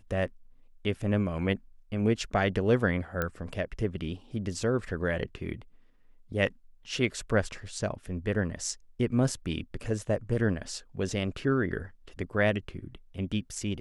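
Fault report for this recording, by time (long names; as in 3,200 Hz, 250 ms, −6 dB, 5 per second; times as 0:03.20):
0:03.22: click −15 dBFS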